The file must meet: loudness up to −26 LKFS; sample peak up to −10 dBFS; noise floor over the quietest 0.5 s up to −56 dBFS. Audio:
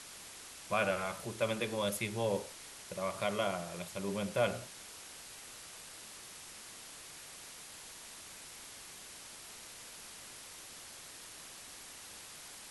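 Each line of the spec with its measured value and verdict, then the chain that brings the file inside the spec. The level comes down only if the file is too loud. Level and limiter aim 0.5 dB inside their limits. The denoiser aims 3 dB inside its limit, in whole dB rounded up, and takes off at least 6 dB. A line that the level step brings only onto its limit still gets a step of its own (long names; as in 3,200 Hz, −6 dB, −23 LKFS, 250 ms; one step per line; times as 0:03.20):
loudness −40.0 LKFS: in spec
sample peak −18.0 dBFS: in spec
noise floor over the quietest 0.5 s −51 dBFS: out of spec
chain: broadband denoise 8 dB, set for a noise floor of −51 dBFS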